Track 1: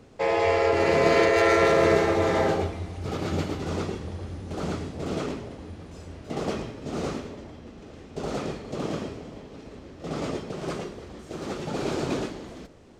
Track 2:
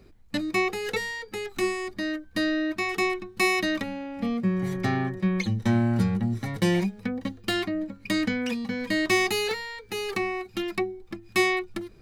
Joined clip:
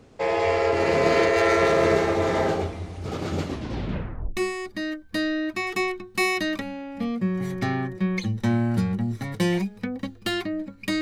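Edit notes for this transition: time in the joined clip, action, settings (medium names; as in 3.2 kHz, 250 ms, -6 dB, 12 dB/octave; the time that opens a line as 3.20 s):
track 1
3.43 s: tape stop 0.94 s
4.37 s: go over to track 2 from 1.59 s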